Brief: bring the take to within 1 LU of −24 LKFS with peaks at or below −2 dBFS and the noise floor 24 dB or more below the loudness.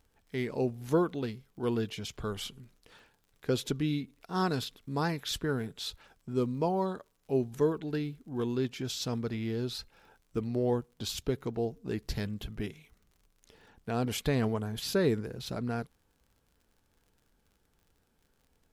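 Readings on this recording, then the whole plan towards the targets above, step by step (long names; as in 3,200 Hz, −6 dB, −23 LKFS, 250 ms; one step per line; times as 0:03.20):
crackle rate 44 per second; integrated loudness −33.5 LKFS; sample peak −16.5 dBFS; target loudness −24.0 LKFS
→ click removal
level +9.5 dB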